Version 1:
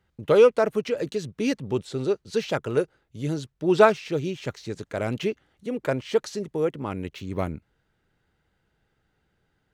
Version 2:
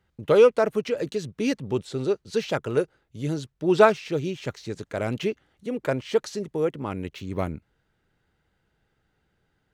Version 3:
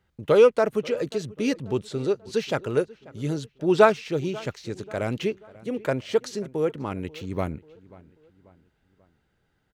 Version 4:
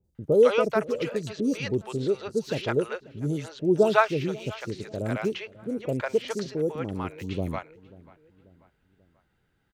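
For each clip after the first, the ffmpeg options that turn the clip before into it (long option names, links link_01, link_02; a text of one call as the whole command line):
ffmpeg -i in.wav -af anull out.wav
ffmpeg -i in.wav -filter_complex "[0:a]asplit=2[link_01][link_02];[link_02]adelay=538,lowpass=frequency=2600:poles=1,volume=-21dB,asplit=2[link_03][link_04];[link_04]adelay=538,lowpass=frequency=2600:poles=1,volume=0.47,asplit=2[link_05][link_06];[link_06]adelay=538,lowpass=frequency=2600:poles=1,volume=0.47[link_07];[link_01][link_03][link_05][link_07]amix=inputs=4:normalize=0" out.wav
ffmpeg -i in.wav -filter_complex "[0:a]acrossover=split=610|5600[link_01][link_02][link_03];[link_03]adelay=40[link_04];[link_02]adelay=150[link_05];[link_01][link_05][link_04]amix=inputs=3:normalize=0" out.wav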